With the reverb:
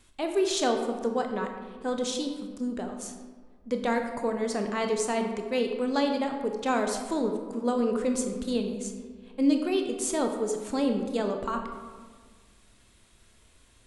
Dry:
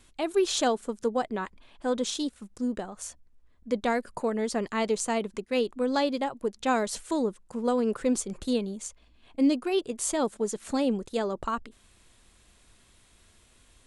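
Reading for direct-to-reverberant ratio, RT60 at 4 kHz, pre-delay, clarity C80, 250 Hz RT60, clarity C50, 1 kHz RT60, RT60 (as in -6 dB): 4.0 dB, 0.85 s, 20 ms, 7.5 dB, 1.9 s, 6.0 dB, 1.5 s, 1.6 s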